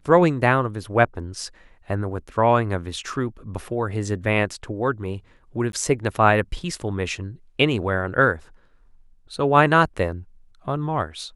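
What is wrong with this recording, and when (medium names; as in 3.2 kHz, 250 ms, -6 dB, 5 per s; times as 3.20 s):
5.72–5.73 s: dropout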